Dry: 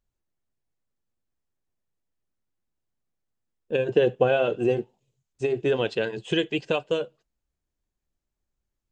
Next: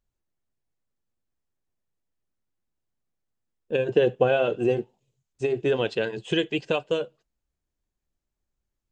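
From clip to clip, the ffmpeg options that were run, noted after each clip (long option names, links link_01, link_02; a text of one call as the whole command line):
ffmpeg -i in.wav -af anull out.wav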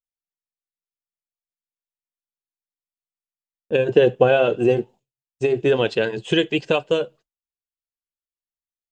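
ffmpeg -i in.wav -af "agate=range=-33dB:threshold=-45dB:ratio=3:detection=peak,volume=5.5dB" out.wav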